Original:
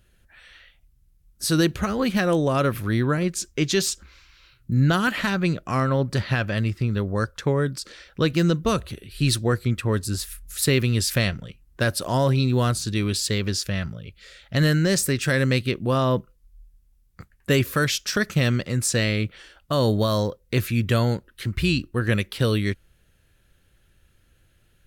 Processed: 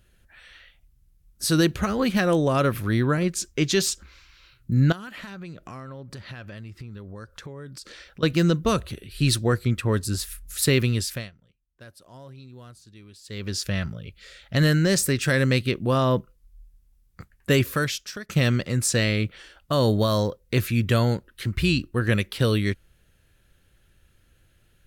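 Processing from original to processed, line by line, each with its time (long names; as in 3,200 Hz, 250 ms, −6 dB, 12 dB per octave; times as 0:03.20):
0:04.92–0:08.23: downward compressor 5 to 1, threshold −37 dBFS
0:10.84–0:13.70: duck −24 dB, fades 0.46 s
0:17.62–0:18.29: fade out, to −23.5 dB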